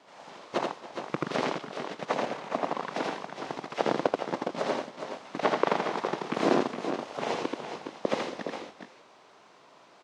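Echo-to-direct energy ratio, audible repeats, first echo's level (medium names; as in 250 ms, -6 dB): -1.5 dB, 3, -3.0 dB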